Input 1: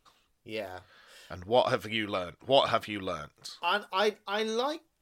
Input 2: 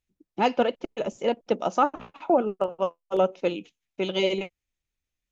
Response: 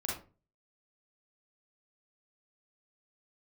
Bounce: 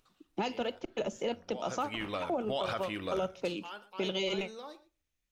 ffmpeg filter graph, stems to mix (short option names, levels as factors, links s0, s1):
-filter_complex "[0:a]alimiter=limit=0.106:level=0:latency=1:release=50,acompressor=mode=upward:threshold=0.00447:ratio=2.5,volume=0.668,afade=t=in:st=1.57:d=0.63:silence=0.237137,afade=t=out:st=3.25:d=0.39:silence=0.237137,asplit=3[s0][s1][s2];[s1]volume=0.141[s3];[s2]volume=0.126[s4];[1:a]acrossover=split=130|3000[s5][s6][s7];[s6]acompressor=threshold=0.0251:ratio=3[s8];[s5][s8][s7]amix=inputs=3:normalize=0,volume=1,asplit=2[s9][s10];[s10]volume=0.0668[s11];[2:a]atrim=start_sample=2205[s12];[s3][s11]amix=inputs=2:normalize=0[s13];[s13][s12]afir=irnorm=-1:irlink=0[s14];[s4]aecho=0:1:119:1[s15];[s0][s9][s14][s15]amix=inputs=4:normalize=0,alimiter=limit=0.0708:level=0:latency=1:release=36"